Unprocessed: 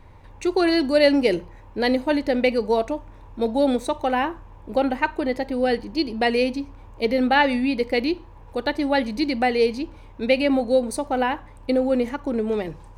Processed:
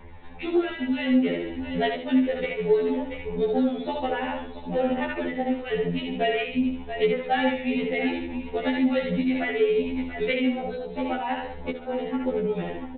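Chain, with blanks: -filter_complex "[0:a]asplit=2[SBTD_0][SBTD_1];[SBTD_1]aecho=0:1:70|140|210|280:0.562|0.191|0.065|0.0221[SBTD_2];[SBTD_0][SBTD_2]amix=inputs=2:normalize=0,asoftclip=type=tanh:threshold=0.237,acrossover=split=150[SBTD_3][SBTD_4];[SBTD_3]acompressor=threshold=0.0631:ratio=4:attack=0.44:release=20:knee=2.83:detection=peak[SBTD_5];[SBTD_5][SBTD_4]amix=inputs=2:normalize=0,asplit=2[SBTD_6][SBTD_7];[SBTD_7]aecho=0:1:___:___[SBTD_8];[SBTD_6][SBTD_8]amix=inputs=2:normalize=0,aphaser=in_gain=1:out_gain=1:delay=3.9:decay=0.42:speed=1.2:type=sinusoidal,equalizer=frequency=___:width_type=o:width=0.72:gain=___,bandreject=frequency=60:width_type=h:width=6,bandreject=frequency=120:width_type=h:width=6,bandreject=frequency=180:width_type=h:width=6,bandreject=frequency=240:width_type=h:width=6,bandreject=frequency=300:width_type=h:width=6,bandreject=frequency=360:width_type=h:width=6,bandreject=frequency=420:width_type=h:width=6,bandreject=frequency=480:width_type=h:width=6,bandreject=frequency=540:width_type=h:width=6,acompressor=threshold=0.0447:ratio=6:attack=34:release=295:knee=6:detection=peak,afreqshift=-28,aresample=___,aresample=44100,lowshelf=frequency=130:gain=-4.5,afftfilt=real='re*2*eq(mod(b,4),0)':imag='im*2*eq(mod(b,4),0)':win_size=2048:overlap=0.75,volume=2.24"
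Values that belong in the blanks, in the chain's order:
682, 0.15, 1200, -7.5, 8000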